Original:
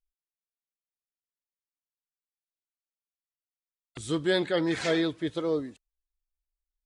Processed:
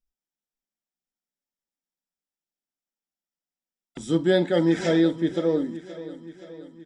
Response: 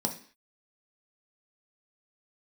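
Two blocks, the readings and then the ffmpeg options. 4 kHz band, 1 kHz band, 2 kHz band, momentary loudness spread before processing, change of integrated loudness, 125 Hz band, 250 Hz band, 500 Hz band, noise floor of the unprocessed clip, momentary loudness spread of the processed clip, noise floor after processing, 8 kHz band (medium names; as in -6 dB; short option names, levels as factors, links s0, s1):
-0.5 dB, +2.5 dB, 0.0 dB, 8 LU, +5.5 dB, +7.5 dB, +7.0 dB, +5.5 dB, under -85 dBFS, 20 LU, under -85 dBFS, 0.0 dB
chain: -filter_complex "[0:a]lowshelf=f=190:g=6,aecho=1:1:523|1046|1569|2092|2615|3138:0.158|0.0919|0.0533|0.0309|0.0179|0.0104,asplit=2[s0][s1];[1:a]atrim=start_sample=2205,atrim=end_sample=3087,lowpass=8600[s2];[s1][s2]afir=irnorm=-1:irlink=0,volume=0.531[s3];[s0][s3]amix=inputs=2:normalize=0,volume=0.668"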